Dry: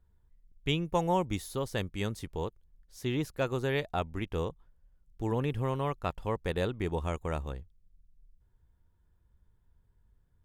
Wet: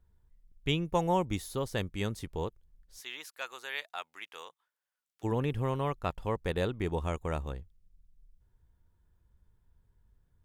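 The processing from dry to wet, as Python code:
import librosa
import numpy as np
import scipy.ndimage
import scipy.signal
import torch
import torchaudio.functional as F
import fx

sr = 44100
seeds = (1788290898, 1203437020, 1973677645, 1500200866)

y = fx.highpass(x, sr, hz=1300.0, slope=12, at=(3.0, 5.23), fade=0.02)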